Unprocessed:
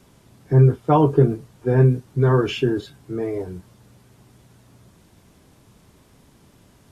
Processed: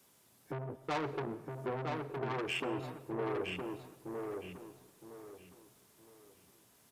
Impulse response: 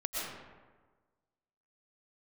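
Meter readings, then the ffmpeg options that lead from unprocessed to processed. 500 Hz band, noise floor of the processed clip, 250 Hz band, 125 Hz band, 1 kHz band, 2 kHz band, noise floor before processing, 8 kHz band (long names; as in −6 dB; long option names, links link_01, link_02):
−17.0 dB, −67 dBFS, −18.5 dB, −26.5 dB, −13.5 dB, −7.0 dB, −55 dBFS, can't be measured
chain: -filter_complex "[0:a]asplit=2[link_01][link_02];[link_02]asoftclip=type=hard:threshold=-17.5dB,volume=-8.5dB[link_03];[link_01][link_03]amix=inputs=2:normalize=0,highpass=frequency=40:width=0.5412,highpass=frequency=40:width=1.3066,afwtdn=0.0447,highshelf=frequency=3600:gain=-6.5,acompressor=threshold=-35dB:ratio=2,asoftclip=type=tanh:threshold=-31dB,aemphasis=mode=production:type=riaa,asplit=2[link_04][link_05];[link_05]adelay=964,lowpass=frequency=3700:poles=1,volume=-3.5dB,asplit=2[link_06][link_07];[link_07]adelay=964,lowpass=frequency=3700:poles=1,volume=0.3,asplit=2[link_08][link_09];[link_09]adelay=964,lowpass=frequency=3700:poles=1,volume=0.3,asplit=2[link_10][link_11];[link_11]adelay=964,lowpass=frequency=3700:poles=1,volume=0.3[link_12];[link_04][link_06][link_08][link_10][link_12]amix=inputs=5:normalize=0,asplit=2[link_13][link_14];[1:a]atrim=start_sample=2205[link_15];[link_14][link_15]afir=irnorm=-1:irlink=0,volume=-19dB[link_16];[link_13][link_16]amix=inputs=2:normalize=0,volume=1dB"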